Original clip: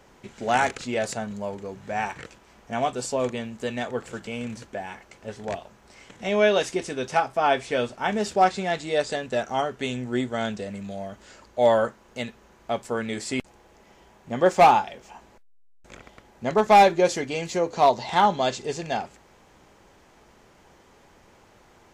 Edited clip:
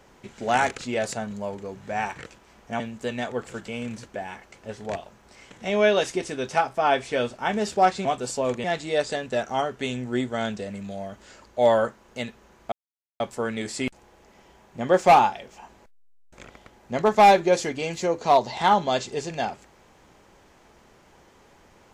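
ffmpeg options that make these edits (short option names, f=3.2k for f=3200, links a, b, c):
-filter_complex "[0:a]asplit=5[a][b][c][d][e];[a]atrim=end=2.802[f];[b]atrim=start=3.388:end=8.642[g];[c]atrim=start=2.798:end=3.392[h];[d]atrim=start=8.638:end=12.72,asetpts=PTS-STARTPTS,afade=t=out:st=4.078:d=0.004:c=hsin,apad=pad_dur=0.48[i];[e]atrim=start=12.72,asetpts=PTS-STARTPTS,afade=t=in:d=0.004:c=hsin[j];[f][g]acrossfade=d=0.004:c1=hsin:c2=hsin[k];[k][h]acrossfade=d=0.004:c1=hsin:c2=hsin[l];[i][j]concat=n=2:v=0:a=1[m];[l][m]acrossfade=d=0.004:c1=hsin:c2=hsin"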